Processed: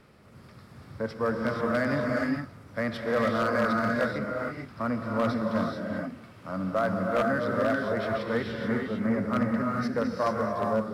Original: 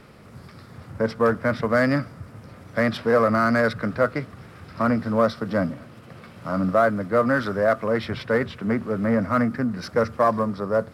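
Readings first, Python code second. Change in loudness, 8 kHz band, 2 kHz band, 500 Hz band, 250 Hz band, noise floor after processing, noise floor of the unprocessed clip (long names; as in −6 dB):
−5.5 dB, can't be measured, −4.5 dB, −6.0 dB, −4.0 dB, −51 dBFS, −46 dBFS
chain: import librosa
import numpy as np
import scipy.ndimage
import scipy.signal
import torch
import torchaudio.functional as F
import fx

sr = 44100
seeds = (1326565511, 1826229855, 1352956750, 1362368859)

y = fx.rev_gated(x, sr, seeds[0], gate_ms=470, shape='rising', drr_db=-1.0)
y = 10.0 ** (-9.0 / 20.0) * (np.abs((y / 10.0 ** (-9.0 / 20.0) + 3.0) % 4.0 - 2.0) - 1.0)
y = F.gain(torch.from_numpy(y), -8.5).numpy()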